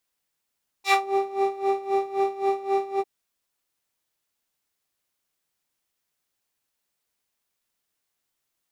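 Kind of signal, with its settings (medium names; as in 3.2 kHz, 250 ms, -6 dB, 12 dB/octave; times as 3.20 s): synth patch with tremolo G5, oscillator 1 square, interval +7 st, detune 28 cents, sub -2 dB, noise -5 dB, filter bandpass, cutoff 410 Hz, Q 1, filter envelope 3.5 oct, filter decay 0.21 s, filter sustain 0%, attack 97 ms, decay 0.13 s, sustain -8.5 dB, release 0.05 s, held 2.15 s, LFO 3.8 Hz, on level 17 dB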